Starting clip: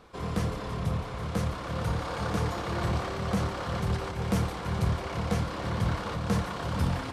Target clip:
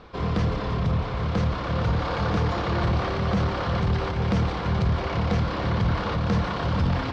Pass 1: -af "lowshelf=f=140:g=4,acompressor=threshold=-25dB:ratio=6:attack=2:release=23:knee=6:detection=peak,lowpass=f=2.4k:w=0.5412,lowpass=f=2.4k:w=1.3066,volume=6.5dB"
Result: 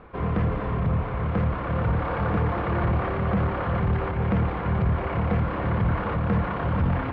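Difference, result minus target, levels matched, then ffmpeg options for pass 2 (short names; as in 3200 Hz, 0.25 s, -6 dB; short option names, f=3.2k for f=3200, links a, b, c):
4000 Hz band -11.5 dB
-af "lowshelf=f=140:g=4,acompressor=threshold=-25dB:ratio=6:attack=2:release=23:knee=6:detection=peak,lowpass=f=5.1k:w=0.5412,lowpass=f=5.1k:w=1.3066,volume=6.5dB"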